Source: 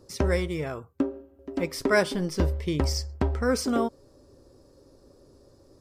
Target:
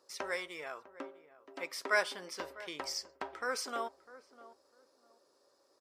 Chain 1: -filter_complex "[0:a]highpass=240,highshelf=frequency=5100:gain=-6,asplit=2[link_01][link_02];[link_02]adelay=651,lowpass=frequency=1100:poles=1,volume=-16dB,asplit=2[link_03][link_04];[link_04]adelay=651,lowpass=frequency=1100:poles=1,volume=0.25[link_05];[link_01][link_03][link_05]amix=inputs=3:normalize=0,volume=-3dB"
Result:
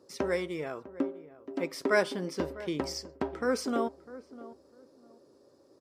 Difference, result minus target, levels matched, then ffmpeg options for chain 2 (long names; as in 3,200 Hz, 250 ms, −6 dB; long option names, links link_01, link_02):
250 Hz band +12.0 dB
-filter_complex "[0:a]highpass=870,highshelf=frequency=5100:gain=-6,asplit=2[link_01][link_02];[link_02]adelay=651,lowpass=frequency=1100:poles=1,volume=-16dB,asplit=2[link_03][link_04];[link_04]adelay=651,lowpass=frequency=1100:poles=1,volume=0.25[link_05];[link_01][link_03][link_05]amix=inputs=3:normalize=0,volume=-3dB"